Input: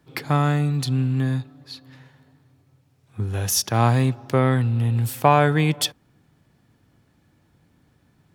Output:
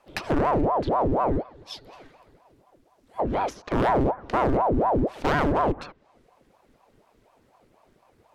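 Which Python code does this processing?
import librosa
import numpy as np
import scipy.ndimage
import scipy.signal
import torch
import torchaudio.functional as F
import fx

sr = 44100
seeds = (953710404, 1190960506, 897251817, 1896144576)

y = fx.env_lowpass_down(x, sr, base_hz=920.0, full_db=-18.0)
y = np.clip(10.0 ** (18.5 / 20.0) * y, -1.0, 1.0) / 10.0 ** (18.5 / 20.0)
y = fx.ring_lfo(y, sr, carrier_hz=510.0, swing_pct=75, hz=4.1)
y = y * librosa.db_to_amplitude(2.5)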